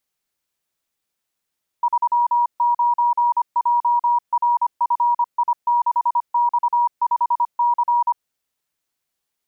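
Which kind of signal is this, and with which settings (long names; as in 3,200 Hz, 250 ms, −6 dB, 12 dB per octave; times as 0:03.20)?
Morse code "39JRFI6X5C" 25 words per minute 957 Hz −14 dBFS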